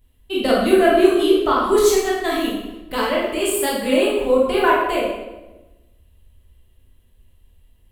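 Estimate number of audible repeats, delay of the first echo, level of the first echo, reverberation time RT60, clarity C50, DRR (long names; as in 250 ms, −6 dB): no echo audible, no echo audible, no echo audible, 1.1 s, 0.5 dB, −6.0 dB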